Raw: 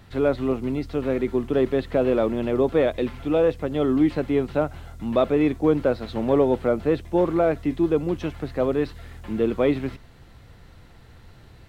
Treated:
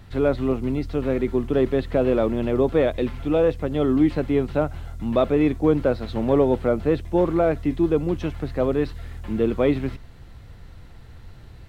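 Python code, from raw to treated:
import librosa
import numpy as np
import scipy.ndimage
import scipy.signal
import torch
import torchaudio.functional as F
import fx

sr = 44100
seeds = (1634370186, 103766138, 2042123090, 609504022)

y = fx.low_shelf(x, sr, hz=110.0, db=8.0)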